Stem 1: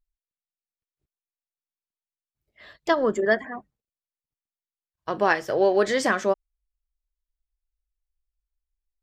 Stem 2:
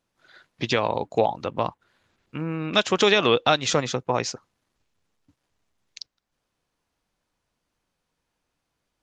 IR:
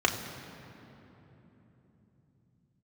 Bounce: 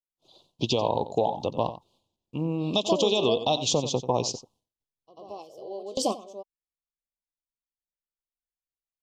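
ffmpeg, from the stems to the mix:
-filter_complex "[0:a]lowshelf=frequency=170:gain=-11,bandreject=frequency=920:width=7.7,volume=0.5dB,asplit=2[link_01][link_02];[link_02]volume=-17dB[link_03];[1:a]agate=range=-33dB:threshold=-58dB:ratio=3:detection=peak,volume=1dB,asplit=3[link_04][link_05][link_06];[link_05]volume=-14dB[link_07];[link_06]apad=whole_len=398158[link_08];[link_01][link_08]sidechaingate=range=-25dB:threshold=-51dB:ratio=16:detection=peak[link_09];[link_03][link_07]amix=inputs=2:normalize=0,aecho=0:1:90:1[link_10];[link_09][link_04][link_10]amix=inputs=3:normalize=0,asuperstop=centerf=1700:order=8:qfactor=0.91,alimiter=limit=-11.5dB:level=0:latency=1:release=221"

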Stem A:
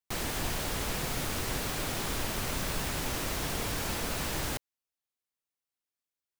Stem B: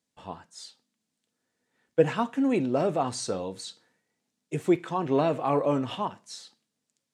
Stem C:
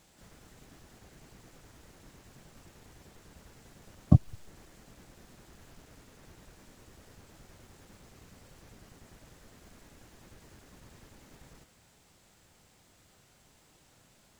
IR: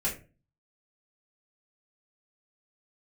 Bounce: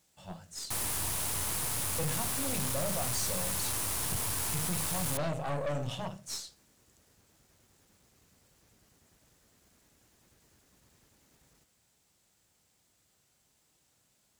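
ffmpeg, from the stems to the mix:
-filter_complex "[0:a]equalizer=frequency=100:width_type=o:width=0.67:gain=10,equalizer=frequency=1000:width_type=o:width=0.67:gain=7,equalizer=frequency=10000:width_type=o:width=0.67:gain=10,adelay=600,volume=-2.5dB[link_01];[1:a]firequalizer=gain_entry='entry(170,0);entry(360,-29);entry(540,-4);entry(880,-12);entry(2700,-8);entry(5200,-3)':delay=0.05:min_phase=1,volume=2.5dB,asplit=2[link_02][link_03];[link_03]volume=-10.5dB[link_04];[2:a]acontrast=84,volume=-16dB[link_05];[3:a]atrim=start_sample=2205[link_06];[link_04][link_06]afir=irnorm=-1:irlink=0[link_07];[link_01][link_02][link_05][link_07]amix=inputs=4:normalize=0,highpass=41,highshelf=frequency=4200:gain=9.5,aeval=exprs='(tanh(31.6*val(0)+0.65)-tanh(0.65))/31.6':channel_layout=same"

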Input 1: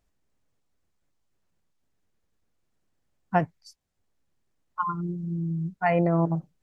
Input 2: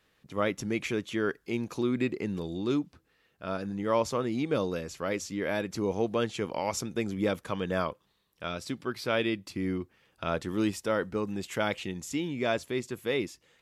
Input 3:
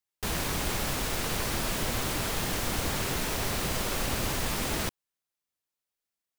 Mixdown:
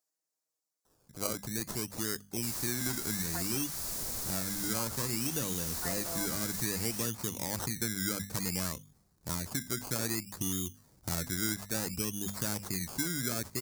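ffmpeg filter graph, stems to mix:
ffmpeg -i stem1.wav -i stem2.wav -i stem3.wav -filter_complex "[0:a]highpass=450,aecho=1:1:6.3:0.9,volume=-13dB[link_01];[1:a]bandreject=frequency=50:width_type=h:width=6,bandreject=frequency=100:width_type=h:width=6,bandreject=frequency=150:width_type=h:width=6,bandreject=frequency=200:width_type=h:width=6,bandreject=frequency=250:width_type=h:width=6,asubboost=boost=7:cutoff=240,acrusher=samples=19:mix=1:aa=0.000001:lfo=1:lforange=11.4:lforate=0.59,adelay=850,volume=-2.5dB[link_02];[2:a]adelay=2200,volume=-13dB[link_03];[link_01][link_02][link_03]amix=inputs=3:normalize=0,highshelf=frequency=3100:gain=-9,acrossover=split=810|2900[link_04][link_05][link_06];[link_04]acompressor=threshold=-37dB:ratio=4[link_07];[link_05]acompressor=threshold=-40dB:ratio=4[link_08];[link_06]acompressor=threshold=-50dB:ratio=4[link_09];[link_07][link_08][link_09]amix=inputs=3:normalize=0,aexciter=amount=10.4:drive=2.5:freq=4400" out.wav

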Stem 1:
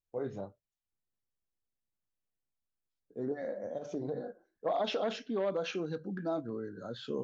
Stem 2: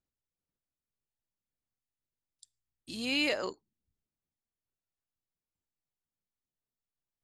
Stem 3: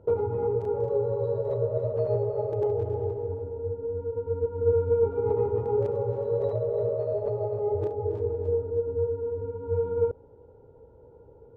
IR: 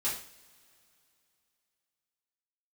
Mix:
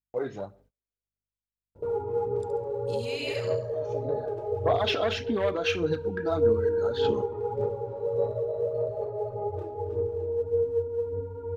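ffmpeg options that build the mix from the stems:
-filter_complex "[0:a]equalizer=frequency=2400:width=0.57:gain=7.5,volume=2.5dB,asplit=2[link_01][link_02];[link_02]volume=-22dB[link_03];[1:a]aeval=exprs='val(0)+0.000282*(sin(2*PI*50*n/s)+sin(2*PI*2*50*n/s)/2+sin(2*PI*3*50*n/s)/3+sin(2*PI*4*50*n/s)/4+sin(2*PI*5*50*n/s)/5)':channel_layout=same,adynamicequalizer=threshold=0.00794:dfrequency=1700:dqfactor=0.7:tfrequency=1700:tqfactor=0.7:attack=5:release=100:ratio=0.375:range=2.5:mode=boostabove:tftype=highshelf,volume=1dB,asplit=3[link_04][link_05][link_06];[link_05]volume=-14dB[link_07];[2:a]adelay=1750,volume=-7.5dB,asplit=2[link_08][link_09];[link_09]volume=-3.5dB[link_10];[link_06]apad=whole_len=319211[link_11];[link_01][link_11]sidechaincompress=threshold=-40dB:ratio=8:attack=16:release=1130[link_12];[link_04][link_08]amix=inputs=2:normalize=0,acompressor=threshold=-38dB:ratio=6,volume=0dB[link_13];[3:a]atrim=start_sample=2205[link_14];[link_03][link_10]amix=inputs=2:normalize=0[link_15];[link_15][link_14]afir=irnorm=-1:irlink=0[link_16];[link_07]aecho=0:1:69|138|207|276|345:1|0.38|0.144|0.0549|0.0209[link_17];[link_12][link_13][link_16][link_17]amix=inputs=4:normalize=0,aphaser=in_gain=1:out_gain=1:delay=3.1:decay=0.43:speed=1.7:type=sinusoidal,agate=range=-30dB:threshold=-59dB:ratio=16:detection=peak"

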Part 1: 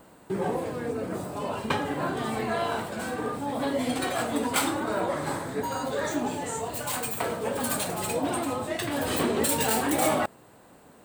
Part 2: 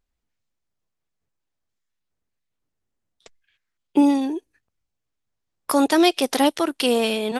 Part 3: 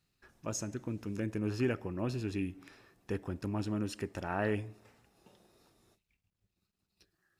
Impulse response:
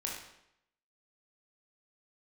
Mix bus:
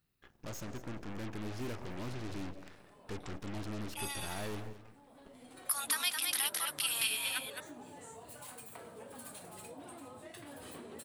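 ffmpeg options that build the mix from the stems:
-filter_complex "[0:a]acompressor=threshold=-34dB:ratio=3,equalizer=frequency=10000:width=6.5:gain=11,adelay=1550,volume=-14.5dB[link_01];[1:a]highpass=frequency=1300:width=0.5412,highpass=frequency=1300:width=1.3066,aexciter=amount=3.9:drive=5.3:freq=9100,volume=-4.5dB,asplit=2[link_02][link_03];[link_03]volume=-6dB[link_04];[2:a]lowpass=frequency=2400:poles=1,asoftclip=type=tanh:threshold=-35.5dB,aeval=exprs='0.0168*(cos(1*acos(clip(val(0)/0.0168,-1,1)))-cos(1*PI/2))+0.00596*(cos(8*acos(clip(val(0)/0.0168,-1,1)))-cos(8*PI/2))':channel_layout=same,volume=-2.5dB,asplit=3[link_05][link_06][link_07];[link_06]volume=-14.5dB[link_08];[link_07]apad=whole_len=555364[link_09];[link_01][link_09]sidechaincompress=threshold=-55dB:ratio=8:attack=16:release=992[link_10];[link_04][link_08]amix=inputs=2:normalize=0,aecho=0:1:214:1[link_11];[link_10][link_02][link_05][link_11]amix=inputs=4:normalize=0,alimiter=limit=-19.5dB:level=0:latency=1:release=234"

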